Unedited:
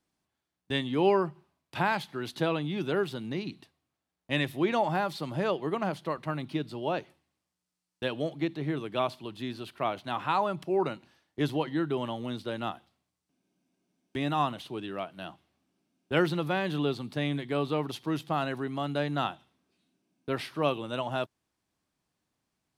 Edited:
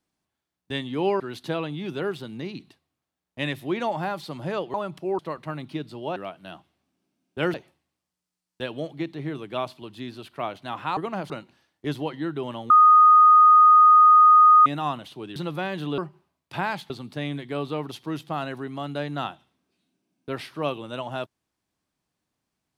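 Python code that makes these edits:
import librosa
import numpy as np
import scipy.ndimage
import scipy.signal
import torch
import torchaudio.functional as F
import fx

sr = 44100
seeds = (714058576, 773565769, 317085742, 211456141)

y = fx.edit(x, sr, fx.move(start_s=1.2, length_s=0.92, to_s=16.9),
    fx.swap(start_s=5.66, length_s=0.33, other_s=10.39, other_length_s=0.45),
    fx.bleep(start_s=12.24, length_s=1.96, hz=1240.0, db=-10.0),
    fx.move(start_s=14.9, length_s=1.38, to_s=6.96), tone=tone)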